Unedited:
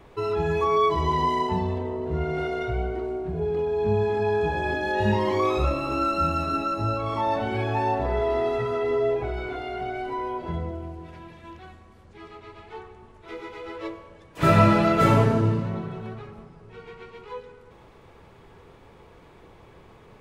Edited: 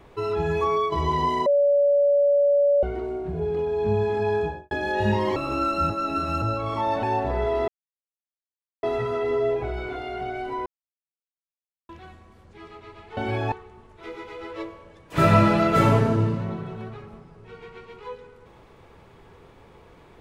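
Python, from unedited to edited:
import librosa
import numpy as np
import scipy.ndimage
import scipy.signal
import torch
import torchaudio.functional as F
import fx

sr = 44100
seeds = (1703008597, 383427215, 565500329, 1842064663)

y = fx.studio_fade_out(x, sr, start_s=4.35, length_s=0.36)
y = fx.edit(y, sr, fx.fade_out_to(start_s=0.67, length_s=0.25, floor_db=-7.0),
    fx.bleep(start_s=1.46, length_s=1.37, hz=571.0, db=-15.5),
    fx.cut(start_s=5.36, length_s=0.4),
    fx.reverse_span(start_s=6.3, length_s=0.52),
    fx.move(start_s=7.43, length_s=0.35, to_s=12.77),
    fx.insert_silence(at_s=8.43, length_s=1.15),
    fx.silence(start_s=10.26, length_s=1.23), tone=tone)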